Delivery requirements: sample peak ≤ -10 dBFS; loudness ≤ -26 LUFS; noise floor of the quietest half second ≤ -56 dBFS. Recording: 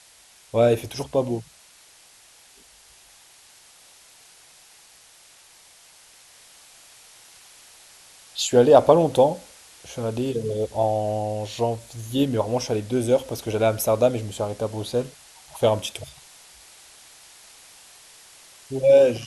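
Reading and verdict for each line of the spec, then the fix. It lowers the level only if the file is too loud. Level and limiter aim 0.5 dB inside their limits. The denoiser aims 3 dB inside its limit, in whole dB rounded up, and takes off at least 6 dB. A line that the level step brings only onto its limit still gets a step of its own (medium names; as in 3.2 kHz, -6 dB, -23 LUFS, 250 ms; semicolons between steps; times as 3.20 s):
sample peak -2.0 dBFS: fail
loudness -22.0 LUFS: fail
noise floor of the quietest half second -53 dBFS: fail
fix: trim -4.5 dB; peak limiter -10.5 dBFS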